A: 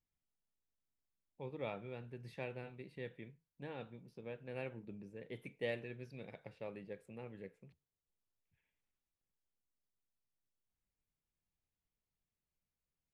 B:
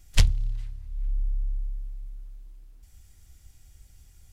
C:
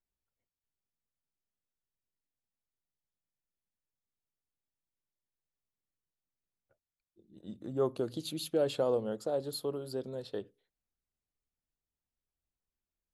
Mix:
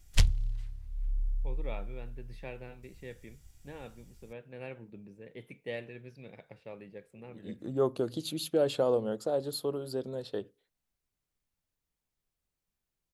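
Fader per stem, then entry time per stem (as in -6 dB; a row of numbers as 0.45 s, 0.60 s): +1.0 dB, -4.5 dB, +2.5 dB; 0.05 s, 0.00 s, 0.00 s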